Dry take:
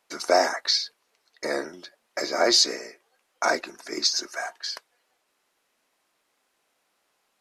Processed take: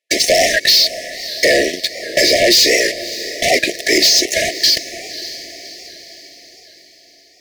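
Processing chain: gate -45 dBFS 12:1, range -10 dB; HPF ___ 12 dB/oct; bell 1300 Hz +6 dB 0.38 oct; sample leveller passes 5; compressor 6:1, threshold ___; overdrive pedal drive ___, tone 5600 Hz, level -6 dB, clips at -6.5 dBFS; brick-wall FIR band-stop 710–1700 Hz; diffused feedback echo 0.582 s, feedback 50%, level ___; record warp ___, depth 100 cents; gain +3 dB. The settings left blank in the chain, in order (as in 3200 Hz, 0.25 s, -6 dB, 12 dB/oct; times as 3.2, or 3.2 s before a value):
250 Hz, -15 dBFS, 16 dB, -14 dB, 78 rpm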